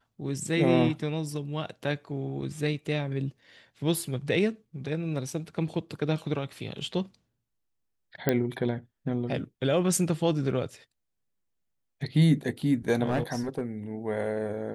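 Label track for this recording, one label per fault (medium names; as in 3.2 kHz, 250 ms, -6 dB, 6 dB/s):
8.290000	8.290000	pop -10 dBFS
13.050000	13.610000	clipped -22 dBFS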